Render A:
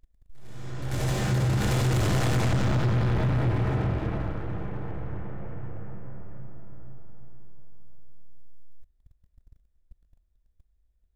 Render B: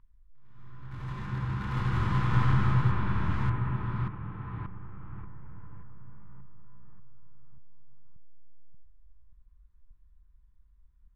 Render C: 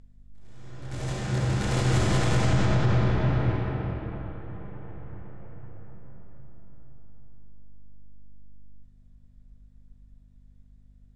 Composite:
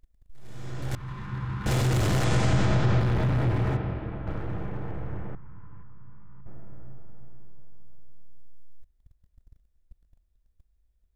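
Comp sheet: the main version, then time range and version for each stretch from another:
A
0.95–1.66 from B
2.24–3 from C
3.77–4.27 from C
5.35–6.46 from B

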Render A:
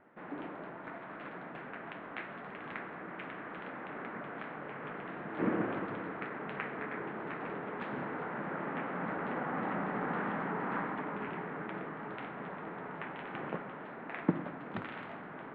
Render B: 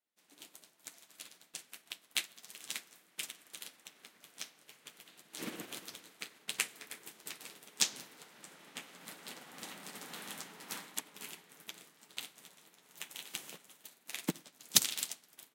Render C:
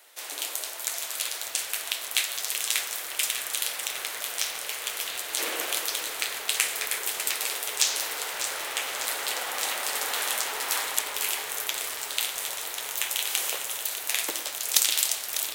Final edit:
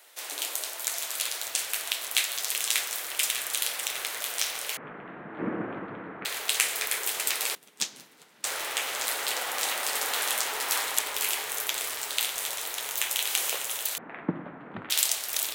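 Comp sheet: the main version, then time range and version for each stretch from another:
C
4.77–6.25 from A
7.55–8.44 from B
13.98–14.9 from A

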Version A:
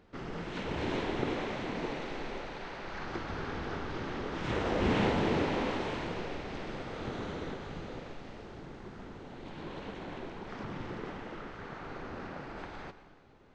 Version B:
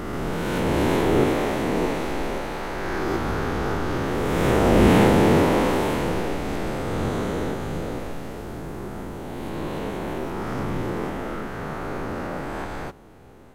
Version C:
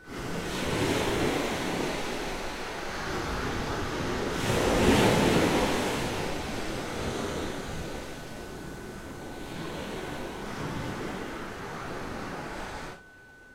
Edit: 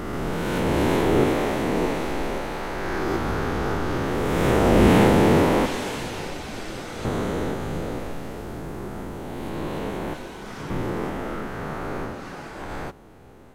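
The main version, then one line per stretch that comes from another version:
B
5.66–7.05 from C
10.14–10.7 from C
12.15–12.6 from C, crossfade 0.24 s
not used: A

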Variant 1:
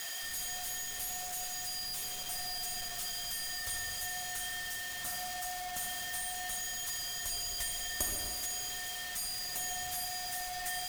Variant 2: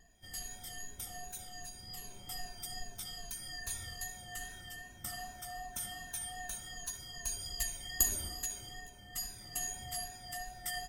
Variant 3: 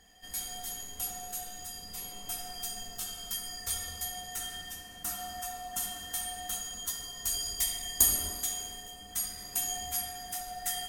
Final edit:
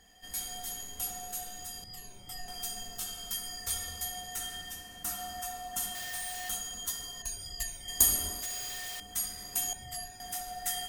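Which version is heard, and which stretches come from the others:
3
1.84–2.48 from 2
5.95–6.49 from 1
7.22–7.88 from 2
8.42–9 from 1
9.73–10.2 from 2

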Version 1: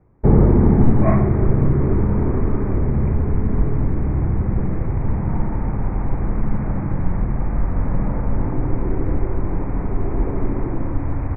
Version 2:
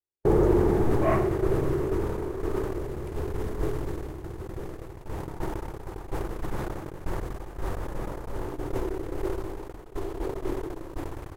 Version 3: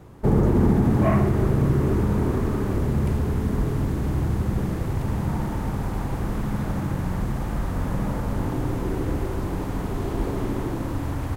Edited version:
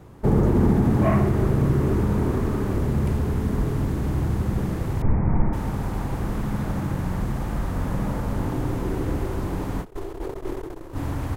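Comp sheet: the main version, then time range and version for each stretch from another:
3
5.02–5.53 from 1
9.83–10.95 from 2, crossfade 0.06 s

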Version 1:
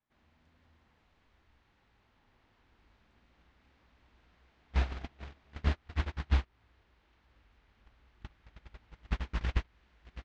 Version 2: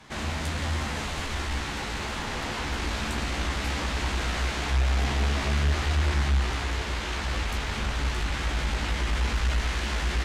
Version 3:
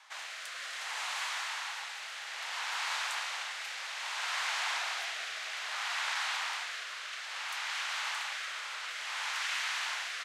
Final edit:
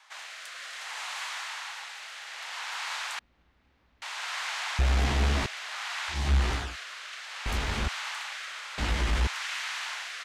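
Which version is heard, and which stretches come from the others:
3
3.19–4.02 from 1
4.79–5.46 from 2
6.2–6.65 from 2, crossfade 0.24 s
7.46–7.88 from 2
8.78–9.27 from 2

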